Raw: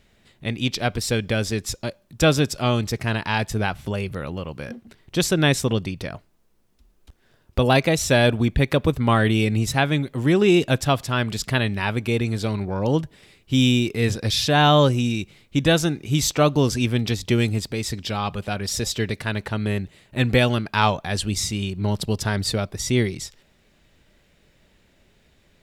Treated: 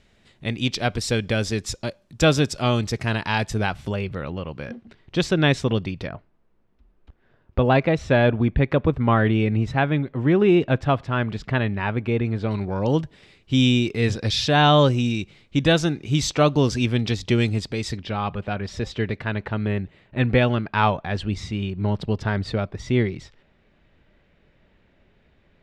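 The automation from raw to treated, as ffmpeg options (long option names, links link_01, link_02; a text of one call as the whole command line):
ffmpeg -i in.wav -af "asetnsamples=nb_out_samples=441:pad=0,asendcmd='3.94 lowpass f 4000;6.08 lowpass f 2100;12.51 lowpass f 5700;17.97 lowpass f 2500',lowpass=8100" out.wav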